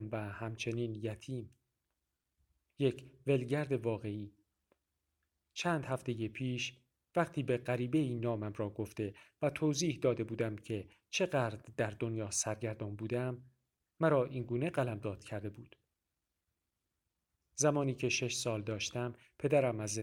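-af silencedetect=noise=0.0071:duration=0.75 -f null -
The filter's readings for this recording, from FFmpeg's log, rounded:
silence_start: 1.45
silence_end: 2.80 | silence_duration: 1.35
silence_start: 4.27
silence_end: 5.57 | silence_duration: 1.30
silence_start: 15.73
silence_end: 17.59 | silence_duration: 1.86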